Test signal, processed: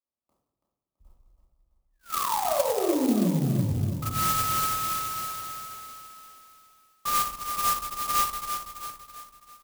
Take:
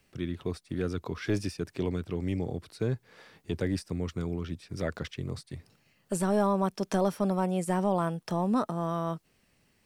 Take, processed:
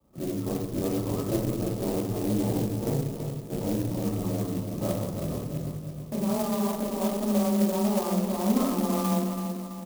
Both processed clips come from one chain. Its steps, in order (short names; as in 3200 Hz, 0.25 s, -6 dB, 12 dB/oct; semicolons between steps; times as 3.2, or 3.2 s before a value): one diode to ground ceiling -32 dBFS; limiter -25.5 dBFS; Chebyshev low-pass 1300 Hz, order 10; frequency shift +20 Hz; on a send: feedback echo 0.331 s, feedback 49%, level -8 dB; on the sum: shoebox room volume 350 m³, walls mixed, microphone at 2.5 m; clock jitter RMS 0.083 ms